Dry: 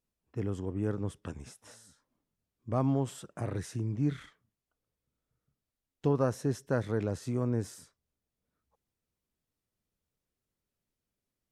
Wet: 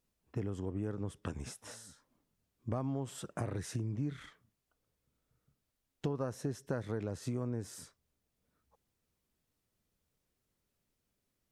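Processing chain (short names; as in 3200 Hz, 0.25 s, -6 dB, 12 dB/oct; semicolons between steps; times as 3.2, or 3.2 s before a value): compressor 6:1, threshold -38 dBFS, peak gain reduction 14.5 dB; gain +4.5 dB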